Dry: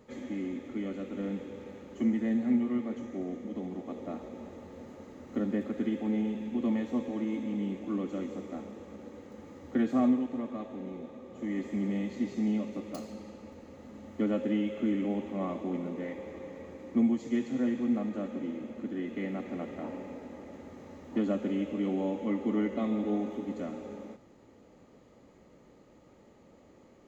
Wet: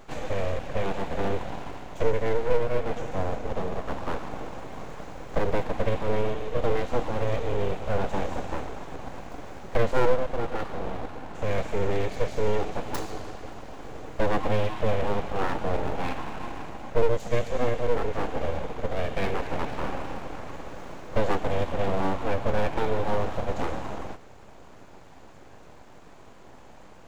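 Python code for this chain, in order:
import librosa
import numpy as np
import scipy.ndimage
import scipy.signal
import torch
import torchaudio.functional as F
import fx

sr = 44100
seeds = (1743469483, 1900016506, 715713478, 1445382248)

p1 = np.abs(x)
p2 = fx.rider(p1, sr, range_db=3, speed_s=0.5)
p3 = p1 + (p2 * 10.0 ** (1.0 / 20.0))
y = p3 * 10.0 ** (3.0 / 20.0)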